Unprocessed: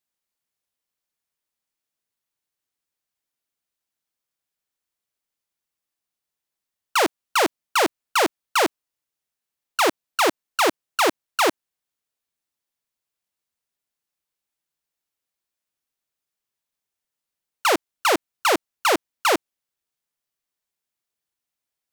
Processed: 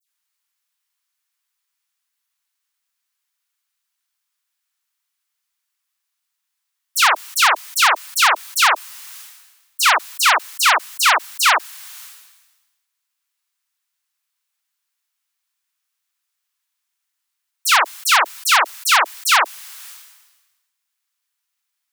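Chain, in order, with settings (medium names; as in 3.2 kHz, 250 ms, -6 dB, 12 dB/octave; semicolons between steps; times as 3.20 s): high-pass 1 kHz 24 dB/octave; phase dispersion lows, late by 90 ms, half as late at 2.7 kHz; decay stretcher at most 48 dB/s; trim +8.5 dB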